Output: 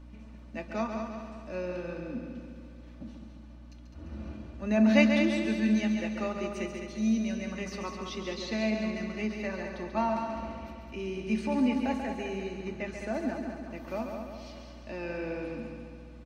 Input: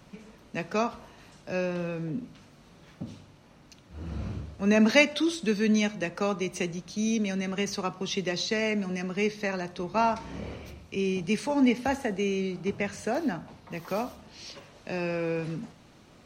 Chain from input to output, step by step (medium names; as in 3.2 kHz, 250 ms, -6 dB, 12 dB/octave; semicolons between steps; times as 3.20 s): treble shelf 4.6 kHz -9.5 dB; hum notches 50/100/150/200 Hz; feedback comb 220 Hz, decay 0.3 s, harmonics odd, mix 70%; multi-head delay 69 ms, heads second and third, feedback 58%, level -7 dB; hum 60 Hz, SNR 17 dB; comb 3.4 ms, depth 52%; trim +2.5 dB